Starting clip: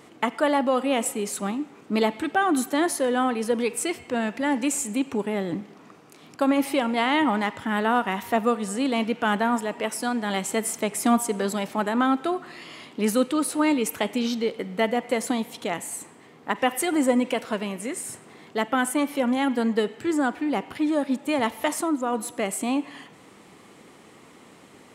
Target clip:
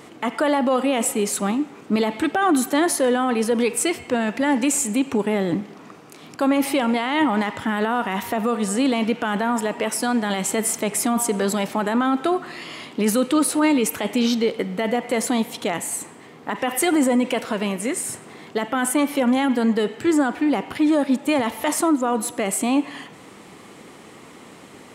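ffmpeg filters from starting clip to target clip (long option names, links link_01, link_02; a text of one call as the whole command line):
ffmpeg -i in.wav -af "alimiter=limit=-18dB:level=0:latency=1:release=23,volume=6.5dB" out.wav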